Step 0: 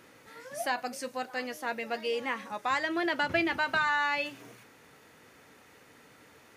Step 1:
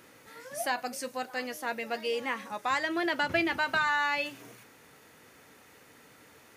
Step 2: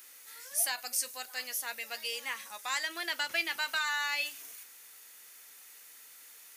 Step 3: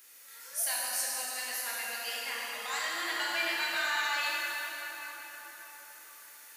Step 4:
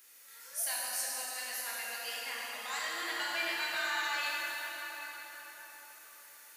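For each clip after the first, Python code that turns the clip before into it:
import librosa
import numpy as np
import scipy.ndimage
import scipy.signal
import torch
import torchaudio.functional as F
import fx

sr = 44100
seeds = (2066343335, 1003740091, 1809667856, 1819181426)

y1 = fx.high_shelf(x, sr, hz=8200.0, db=6.5)
y2 = np.diff(y1, prepend=0.0)
y2 = y2 * 10.0 ** (8.5 / 20.0)
y3 = fx.rev_plate(y2, sr, seeds[0], rt60_s=5.0, hf_ratio=0.6, predelay_ms=0, drr_db=-6.5)
y3 = y3 * 10.0 ** (-5.0 / 20.0)
y4 = fx.echo_opening(y3, sr, ms=129, hz=200, octaves=1, feedback_pct=70, wet_db=-6)
y4 = y4 * 10.0 ** (-3.0 / 20.0)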